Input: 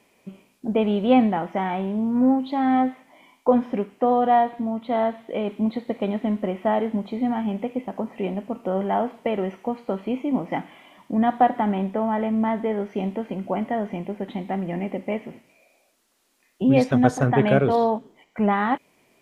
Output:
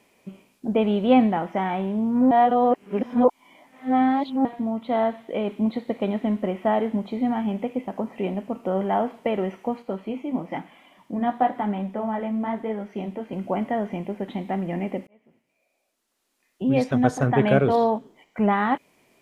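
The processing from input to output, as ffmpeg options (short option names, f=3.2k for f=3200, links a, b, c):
-filter_complex "[0:a]asettb=1/sr,asplit=3[a][b][c];[a]atrim=end=9.824[d];[b]atrim=start=9.82:end=13.33,asetpts=PTS-STARTPTS,afade=t=in:d=0.004:c=qsin,afade=t=out:st=3.506:d=0.004:c=qsin,flanger=delay=3.7:depth=9:regen=-42:speed=1:shape=sinusoidal[e];[c]atrim=start=13.326[f];[d][e]acrossfade=d=0.004:c1=hsin:c2=qsin[g];[g][f]acrossfade=d=0.004:c1=qsin:c2=hsin,asplit=4[h][i][j][k];[h]atrim=end=2.312[l];[i]atrim=start=2.308:end=4.452,asetpts=PTS-STARTPTS,areverse[m];[j]atrim=start=4.448:end=15.07,asetpts=PTS-STARTPTS,afade=t=out:st=10.618:d=0.004:c=hsin[n];[k]atrim=start=15.07,asetpts=PTS-STARTPTS,afade=t=in:d=2.53[o];[l][m]acrossfade=d=0.004:c1=hsin:c2=hsin[p];[n][o]concat=n=2:v=0:a=1[q];[p][q]acrossfade=d=0.004:c1=hsin:c2=hsin"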